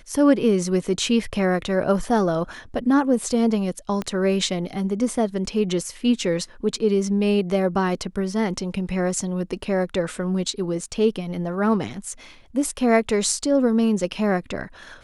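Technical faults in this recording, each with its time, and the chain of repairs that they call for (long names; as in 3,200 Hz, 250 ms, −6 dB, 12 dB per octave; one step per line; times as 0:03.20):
0:04.02: click −14 dBFS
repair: click removal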